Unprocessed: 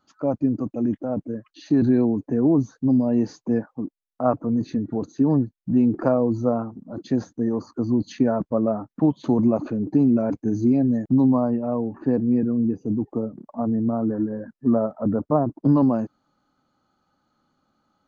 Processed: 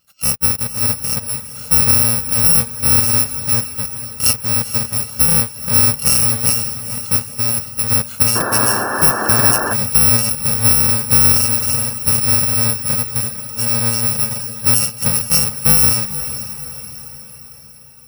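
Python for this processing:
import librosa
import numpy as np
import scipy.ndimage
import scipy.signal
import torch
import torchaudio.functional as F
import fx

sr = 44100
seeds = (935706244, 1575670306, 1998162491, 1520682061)

p1 = fx.bit_reversed(x, sr, seeds[0], block=128)
p2 = fx.peak_eq(p1, sr, hz=1400.0, db=5.0, octaves=0.27)
p3 = p2 + fx.echo_diffused(p2, sr, ms=464, feedback_pct=53, wet_db=-12, dry=0)
p4 = fx.spec_paint(p3, sr, seeds[1], shape='noise', start_s=8.35, length_s=1.39, low_hz=200.0, high_hz=1800.0, level_db=-26.0)
y = p4 * librosa.db_to_amplitude(5.5)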